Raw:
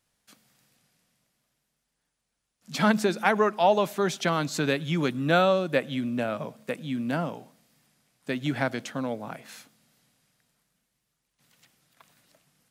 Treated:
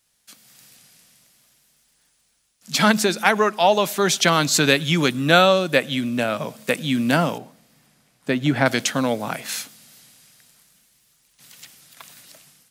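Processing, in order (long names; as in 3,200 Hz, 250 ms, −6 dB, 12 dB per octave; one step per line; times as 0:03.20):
high-shelf EQ 2,200 Hz +10.5 dB, from 0:07.38 −2 dB, from 0:08.66 +11 dB
automatic gain control gain up to 9.5 dB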